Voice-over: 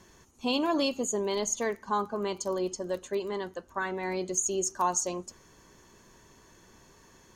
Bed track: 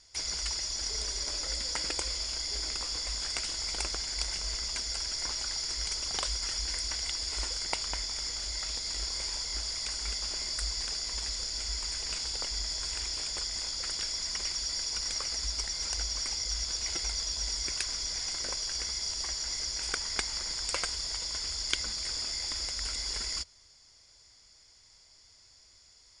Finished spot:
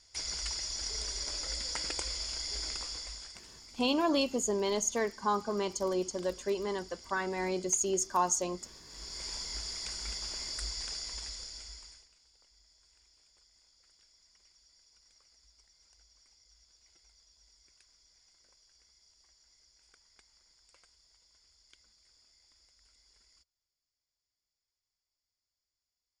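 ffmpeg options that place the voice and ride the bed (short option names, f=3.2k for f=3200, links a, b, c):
-filter_complex "[0:a]adelay=3350,volume=-1dB[a];[1:a]volume=11.5dB,afade=t=out:st=2.71:d=0.69:silence=0.158489,afade=t=in:st=8.87:d=0.46:silence=0.188365,afade=t=out:st=10.97:d=1.12:silence=0.0446684[b];[a][b]amix=inputs=2:normalize=0"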